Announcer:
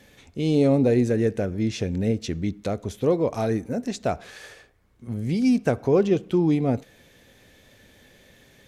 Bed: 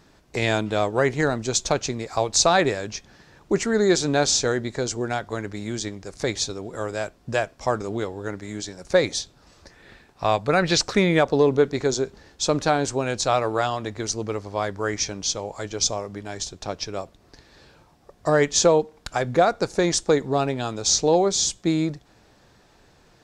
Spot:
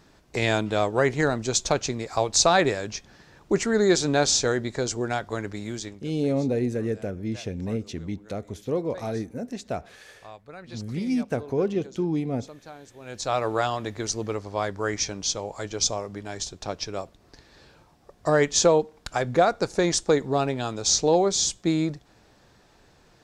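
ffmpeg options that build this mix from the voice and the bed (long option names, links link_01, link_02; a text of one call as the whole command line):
ffmpeg -i stem1.wav -i stem2.wav -filter_complex "[0:a]adelay=5650,volume=-5.5dB[link_01];[1:a]volume=20.5dB,afade=type=out:start_time=5.52:duration=0.69:silence=0.0794328,afade=type=in:start_time=12.99:duration=0.5:silence=0.0841395[link_02];[link_01][link_02]amix=inputs=2:normalize=0" out.wav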